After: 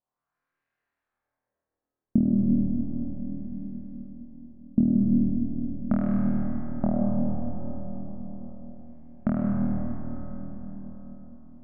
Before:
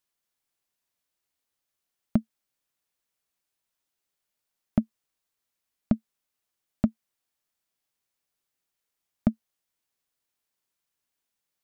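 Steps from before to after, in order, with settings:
pitch vibrato 0.83 Hz 18 cents
flutter between parallel walls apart 4.3 metres, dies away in 1.2 s
auto-filter low-pass sine 0.36 Hz 300–1,800 Hz
comb and all-pass reverb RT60 5 s, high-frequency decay 0.35×, pre-delay 65 ms, DRR −1.5 dB
level −4 dB

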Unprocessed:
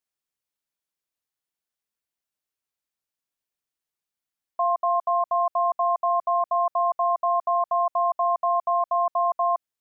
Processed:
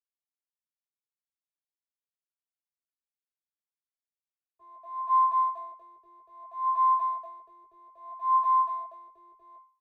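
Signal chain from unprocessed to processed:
mu-law and A-law mismatch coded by mu
spectral tilt +6 dB per octave
in parallel at −2.5 dB: downward compressor 4 to 1, threshold −33 dBFS, peak gain reduction 11 dB
on the sum: harmonic generator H 8 −19 dB, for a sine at −10 dBFS
tuned comb filter 530 Hz, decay 0.39 s, mix 80%
brickwall limiter −22 dBFS, peak gain reduction 4 dB
LFO wah 0.62 Hz 420–1,100 Hz, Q 5.1
frequency shifter −19 Hz
double-tracking delay 20 ms −4 dB
hollow resonant body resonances 420/1,100 Hz, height 8 dB
multiband upward and downward expander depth 70%

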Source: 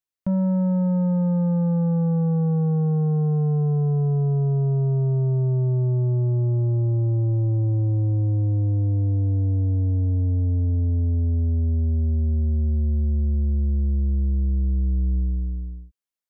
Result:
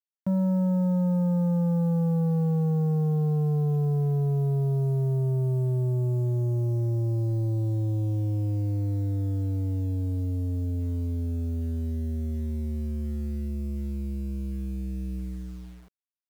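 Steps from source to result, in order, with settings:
high-pass filter 110 Hz 12 dB per octave
bit reduction 9 bits
level −2.5 dB

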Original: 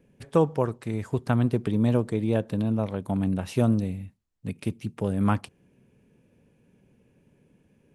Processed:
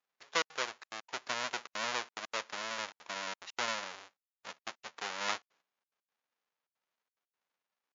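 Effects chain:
each half-wave held at its own peak
gate pattern "xxxxx.xxxx.x.xx" 180 BPM −60 dB
noise gate −48 dBFS, range −16 dB
high-pass filter 1,000 Hz 12 dB per octave
level −6 dB
MP3 96 kbit/s 16,000 Hz

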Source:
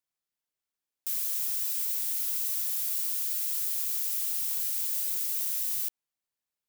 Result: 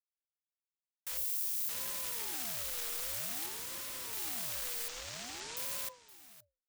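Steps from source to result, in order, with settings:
stylus tracing distortion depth 0.039 ms
in parallel at +0.5 dB: brickwall limiter −27.5 dBFS, peak gain reduction 9.5 dB
0:01.17–0:01.69: on the sum: first difference
noise gate with hold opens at −21 dBFS
low-shelf EQ 380 Hz −6.5 dB
0:03.46–0:04.13: wrap-around overflow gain 28 dB
0:04.88–0:05.57: Butterworth low-pass 7,300 Hz 36 dB per octave
single-tap delay 519 ms −17.5 dB
on a send at −23.5 dB: convolution reverb, pre-delay 7 ms
on the sum: frequency shifter +240 Hz
ring modulator whose carrier an LFO sweeps 510 Hz, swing 55%, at 0.52 Hz
level −6.5 dB

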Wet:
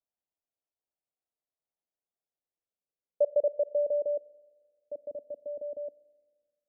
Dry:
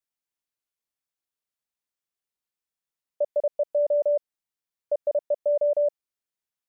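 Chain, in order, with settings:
low-pass filter sweep 690 Hz → 280 Hz, 0:02.23–0:05.11
four-comb reverb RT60 1.6 s, combs from 30 ms, DRR 19 dB
level −4 dB

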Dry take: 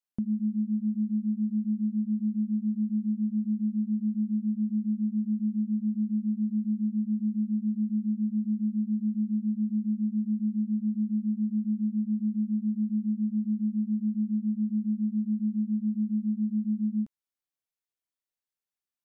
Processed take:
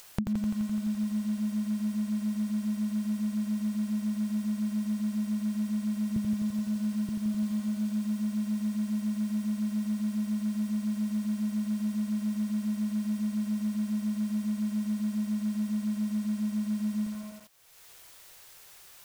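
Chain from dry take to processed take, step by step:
0:06.16–0:07.09: high-pass filter 82 Hz 24 dB per octave
parametric band 240 Hz −14.5 dB 0.56 octaves
upward compression, threshold −35 dBFS
feedback echo at a low word length 85 ms, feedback 80%, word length 9 bits, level −5 dB
level +8 dB

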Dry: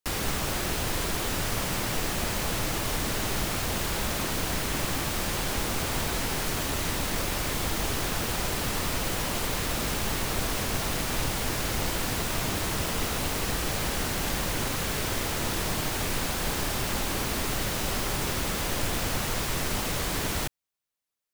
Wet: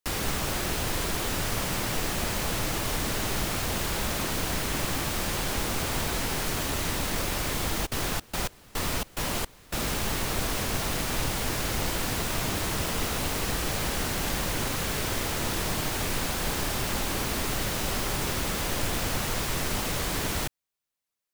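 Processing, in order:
0:07.85–0:09.85: gate pattern ".xx..xx.x..xx" 108 BPM −24 dB

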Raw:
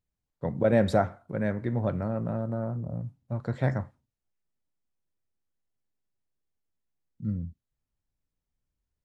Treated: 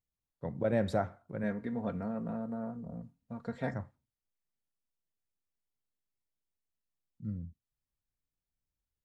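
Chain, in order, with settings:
0:01.43–0:03.74: comb filter 4.3 ms, depth 72%
level −7.5 dB

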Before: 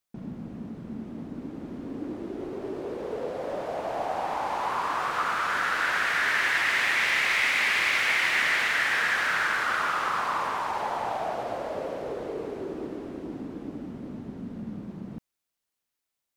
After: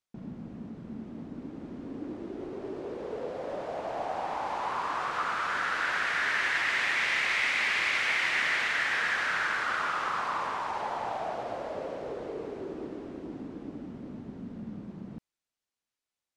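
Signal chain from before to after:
low-pass filter 8,000 Hz 12 dB per octave
level −3.5 dB

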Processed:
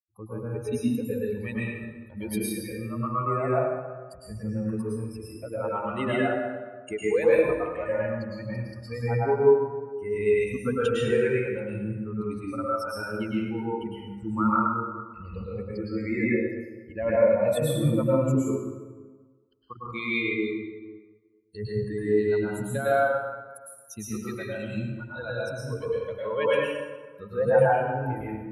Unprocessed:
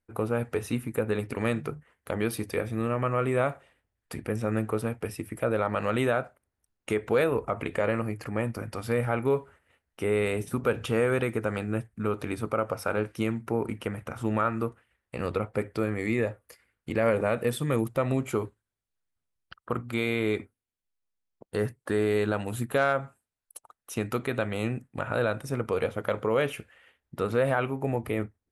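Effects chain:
spectral dynamics exaggerated over time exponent 3
0:21.98–0:22.92: downward compressor, threshold −32 dBFS, peak gain reduction 7.5 dB
dense smooth reverb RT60 1.4 s, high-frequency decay 0.6×, pre-delay 95 ms, DRR −8 dB
level +2.5 dB

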